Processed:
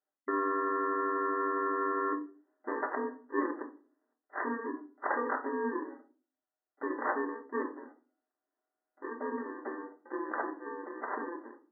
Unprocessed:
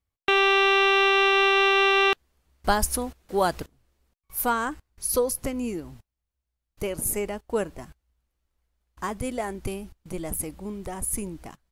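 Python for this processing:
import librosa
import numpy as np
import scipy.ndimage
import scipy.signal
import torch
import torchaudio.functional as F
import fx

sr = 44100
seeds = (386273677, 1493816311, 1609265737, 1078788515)

y = fx.bit_reversed(x, sr, seeds[0], block=64)
y = fx.brickwall_bandpass(y, sr, low_hz=250.0, high_hz=2000.0)
y = fx.room_shoebox(y, sr, seeds[1], volume_m3=220.0, walls='furnished', distance_m=1.2)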